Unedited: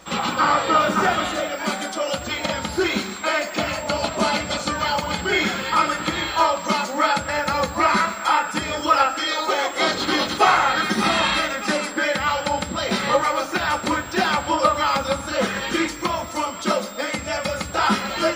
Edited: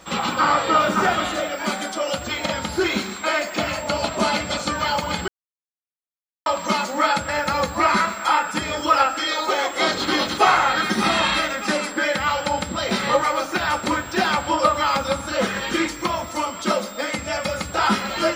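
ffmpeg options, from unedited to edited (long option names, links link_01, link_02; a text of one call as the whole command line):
ffmpeg -i in.wav -filter_complex "[0:a]asplit=3[link_01][link_02][link_03];[link_01]atrim=end=5.28,asetpts=PTS-STARTPTS,afade=type=out:start_time=5.276:duration=0.004:curve=hsin[link_04];[link_02]atrim=start=5.28:end=6.46,asetpts=PTS-STARTPTS,volume=0[link_05];[link_03]atrim=start=6.46,asetpts=PTS-STARTPTS,afade=type=in:duration=0.004:curve=hsin[link_06];[link_04][link_05][link_06]concat=n=3:v=0:a=1" out.wav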